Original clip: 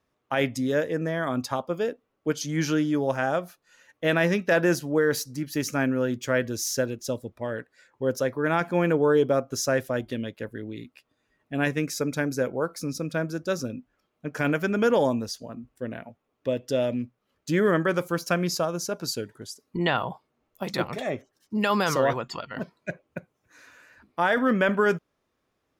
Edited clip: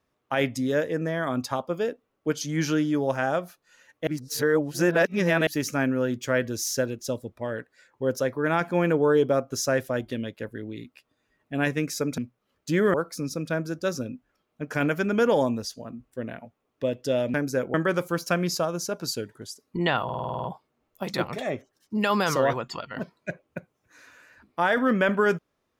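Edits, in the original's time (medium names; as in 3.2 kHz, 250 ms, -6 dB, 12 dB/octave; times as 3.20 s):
4.07–5.47 s: reverse
12.18–12.58 s: swap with 16.98–17.74 s
20.04 s: stutter 0.05 s, 9 plays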